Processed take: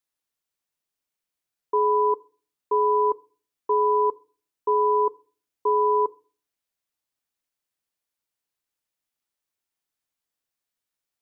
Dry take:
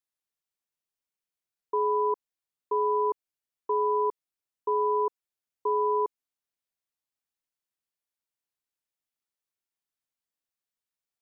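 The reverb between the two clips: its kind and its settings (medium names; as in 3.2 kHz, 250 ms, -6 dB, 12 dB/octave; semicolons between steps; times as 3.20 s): FDN reverb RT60 0.39 s, low-frequency decay 1.55×, high-frequency decay 0.85×, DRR 18 dB; trim +4.5 dB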